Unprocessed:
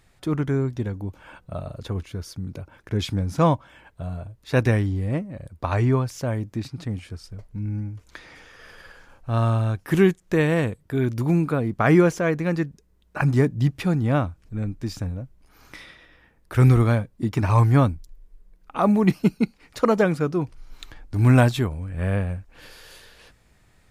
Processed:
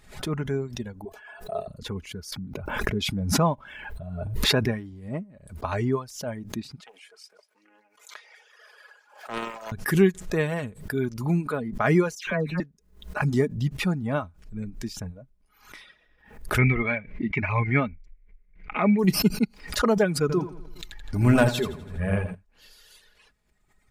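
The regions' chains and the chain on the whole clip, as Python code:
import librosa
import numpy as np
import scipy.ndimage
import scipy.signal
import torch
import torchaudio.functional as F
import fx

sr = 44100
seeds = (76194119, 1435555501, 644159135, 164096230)

y = fx.chain(x, sr, fx.low_shelf(hz=360.0, db=-11.0),
    fx.small_body(hz=(420.0, 680.0, 1700.0), ring_ms=70, db=17),
    fx.sustainer(db_per_s=110.0), at=(1.05, 1.68))
y = fx.chain(y, sr, fx.peak_eq(hz=7100.0, db=-4.5, octaves=1.3),
    fx.pre_swell(db_per_s=24.0), at=(2.32, 4.86))
y = fx.chain(y, sr, fx.highpass(hz=480.0, slope=24),
    fx.echo_wet_highpass(ms=190, feedback_pct=35, hz=1500.0, wet_db=-11.0),
    fx.doppler_dist(depth_ms=0.56), at=(6.8, 9.72))
y = fx.chain(y, sr, fx.bass_treble(bass_db=4, treble_db=-2),
    fx.dispersion(late='lows', ms=121.0, hz=2000.0), at=(12.15, 12.6))
y = fx.chain(y, sr, fx.lowpass_res(hz=2200.0, q=12.0),
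    fx.peak_eq(hz=1000.0, db=-5.0, octaves=1.4), at=(16.58, 18.99))
y = fx.chain(y, sr, fx.leveller(passes=1),
    fx.echo_feedback(ms=83, feedback_pct=54, wet_db=-5.5), at=(20.21, 22.35))
y = fx.dereverb_blind(y, sr, rt60_s=2.0)
y = y + 0.42 * np.pad(y, (int(4.8 * sr / 1000.0), 0))[:len(y)]
y = fx.pre_swell(y, sr, db_per_s=110.0)
y = F.gain(torch.from_numpy(y), -3.5).numpy()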